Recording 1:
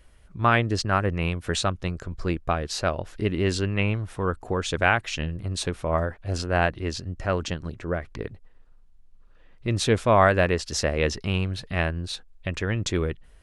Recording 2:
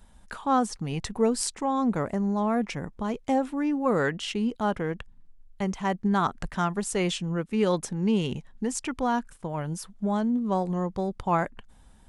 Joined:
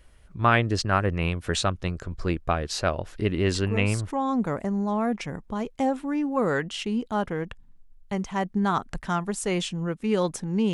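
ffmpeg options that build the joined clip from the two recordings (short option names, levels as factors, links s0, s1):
-filter_complex "[1:a]asplit=2[s0][s1];[0:a]apad=whole_dur=10.73,atrim=end=10.73,atrim=end=4.112[s2];[s1]atrim=start=1.598:end=8.22[s3];[s0]atrim=start=1.04:end=1.6,asetpts=PTS-STARTPTS,volume=0.376,afade=t=in:d=0.004:c=hsin,afade=t=out:st=0.556:d=0.004:c=hsin,adelay=3550[s4];[s2][s3]acrossfade=d=0.004:c1=hsin:c2=hsin[s5];[s5][s4]amix=inputs=2:normalize=0"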